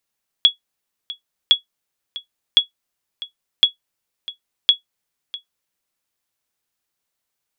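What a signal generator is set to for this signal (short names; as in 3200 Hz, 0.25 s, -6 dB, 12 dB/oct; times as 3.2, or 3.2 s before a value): sonar ping 3360 Hz, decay 0.12 s, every 1.06 s, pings 5, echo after 0.65 s, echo -18 dB -2.5 dBFS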